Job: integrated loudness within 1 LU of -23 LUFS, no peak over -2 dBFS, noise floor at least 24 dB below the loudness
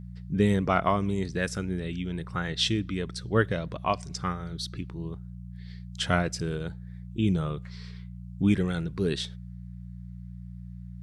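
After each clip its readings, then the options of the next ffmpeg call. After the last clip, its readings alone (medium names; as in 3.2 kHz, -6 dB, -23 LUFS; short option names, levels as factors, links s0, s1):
hum 60 Hz; highest harmonic 180 Hz; hum level -38 dBFS; loudness -29.0 LUFS; peak level -7.0 dBFS; loudness target -23.0 LUFS
-> -af "bandreject=f=60:t=h:w=4,bandreject=f=120:t=h:w=4,bandreject=f=180:t=h:w=4"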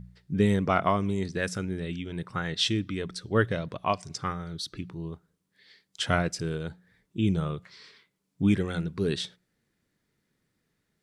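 hum not found; loudness -29.5 LUFS; peak level -7.5 dBFS; loudness target -23.0 LUFS
-> -af "volume=2.11,alimiter=limit=0.794:level=0:latency=1"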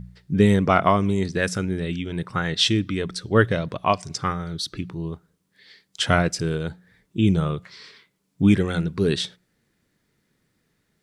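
loudness -23.0 LUFS; peak level -2.0 dBFS; noise floor -72 dBFS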